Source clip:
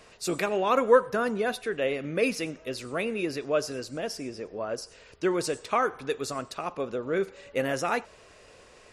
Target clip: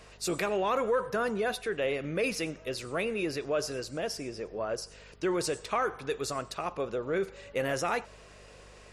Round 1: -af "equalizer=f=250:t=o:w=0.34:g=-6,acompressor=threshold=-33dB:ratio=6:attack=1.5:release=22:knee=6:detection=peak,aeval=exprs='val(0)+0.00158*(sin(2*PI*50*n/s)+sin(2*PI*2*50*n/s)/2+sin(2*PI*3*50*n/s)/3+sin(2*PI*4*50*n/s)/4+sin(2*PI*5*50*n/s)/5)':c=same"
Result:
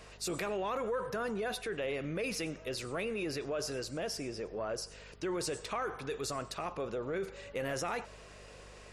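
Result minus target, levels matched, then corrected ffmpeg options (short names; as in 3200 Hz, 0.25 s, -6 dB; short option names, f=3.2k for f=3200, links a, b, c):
compressor: peak gain reduction +7.5 dB
-af "equalizer=f=250:t=o:w=0.34:g=-6,acompressor=threshold=-24dB:ratio=6:attack=1.5:release=22:knee=6:detection=peak,aeval=exprs='val(0)+0.00158*(sin(2*PI*50*n/s)+sin(2*PI*2*50*n/s)/2+sin(2*PI*3*50*n/s)/3+sin(2*PI*4*50*n/s)/4+sin(2*PI*5*50*n/s)/5)':c=same"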